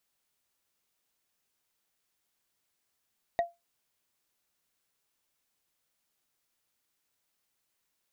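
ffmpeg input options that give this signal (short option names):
-f lavfi -i "aevalsrc='0.1*pow(10,-3*t/0.2)*sin(2*PI*687*t)+0.0316*pow(10,-3*t/0.059)*sin(2*PI*1894.1*t)+0.01*pow(10,-3*t/0.026)*sin(2*PI*3712.5*t)+0.00316*pow(10,-3*t/0.014)*sin(2*PI*6137*t)+0.001*pow(10,-3*t/0.009)*sin(2*PI*9164.6*t)':d=0.45:s=44100"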